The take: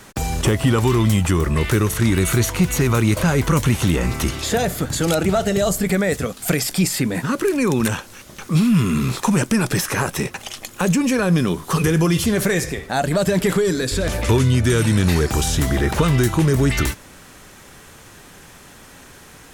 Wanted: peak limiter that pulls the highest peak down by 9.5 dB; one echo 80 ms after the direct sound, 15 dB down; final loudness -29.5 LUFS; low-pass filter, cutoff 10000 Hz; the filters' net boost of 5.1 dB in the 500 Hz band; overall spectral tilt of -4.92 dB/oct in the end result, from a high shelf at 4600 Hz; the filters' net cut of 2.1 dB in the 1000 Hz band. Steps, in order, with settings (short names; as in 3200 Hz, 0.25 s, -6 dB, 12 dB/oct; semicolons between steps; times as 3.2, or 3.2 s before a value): LPF 10000 Hz; bell 500 Hz +8 dB; bell 1000 Hz -6.5 dB; high shelf 4600 Hz +5.5 dB; limiter -13 dBFS; echo 80 ms -15 dB; gain -8 dB